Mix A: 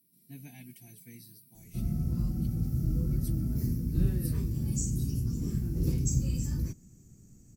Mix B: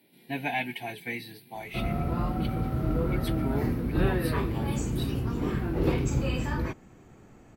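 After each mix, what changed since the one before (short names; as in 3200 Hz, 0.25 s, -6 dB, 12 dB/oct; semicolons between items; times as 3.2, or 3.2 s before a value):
speech +6.5 dB; master: remove EQ curve 180 Hz 0 dB, 840 Hz -27 dB, 3600 Hz -16 dB, 5600 Hz +7 dB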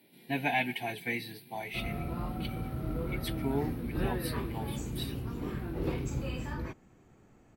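background -7.5 dB; reverb: on, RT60 0.80 s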